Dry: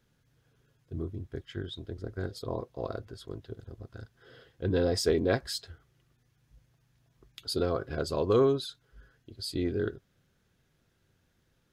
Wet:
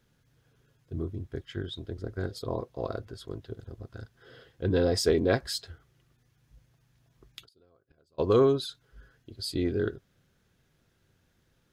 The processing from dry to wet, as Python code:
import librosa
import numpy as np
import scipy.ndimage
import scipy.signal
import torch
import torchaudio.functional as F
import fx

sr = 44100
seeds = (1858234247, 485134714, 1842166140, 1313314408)

y = fx.gate_flip(x, sr, shuts_db=-29.0, range_db=-37, at=(7.44, 8.18), fade=0.02)
y = y * librosa.db_to_amplitude(2.0)